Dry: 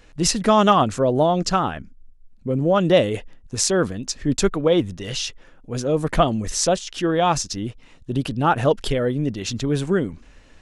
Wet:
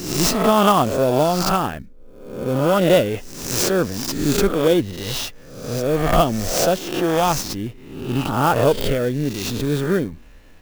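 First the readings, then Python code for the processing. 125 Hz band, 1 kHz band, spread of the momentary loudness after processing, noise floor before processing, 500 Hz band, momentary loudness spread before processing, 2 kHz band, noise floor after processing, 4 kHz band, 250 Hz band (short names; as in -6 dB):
+1.0 dB, +1.0 dB, 12 LU, -50 dBFS, +2.0 dB, 11 LU, +2.5 dB, -42 dBFS, +1.5 dB, +1.5 dB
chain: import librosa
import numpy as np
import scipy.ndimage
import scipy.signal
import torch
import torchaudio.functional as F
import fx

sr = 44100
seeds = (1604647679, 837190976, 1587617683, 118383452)

p1 = fx.spec_swells(x, sr, rise_s=0.83)
p2 = fx.sample_hold(p1, sr, seeds[0], rate_hz=2000.0, jitter_pct=0)
p3 = p1 + F.gain(torch.from_numpy(p2), -11.5).numpy()
p4 = fx.clock_jitter(p3, sr, seeds[1], jitter_ms=0.02)
y = F.gain(torch.from_numpy(p4), -2.0).numpy()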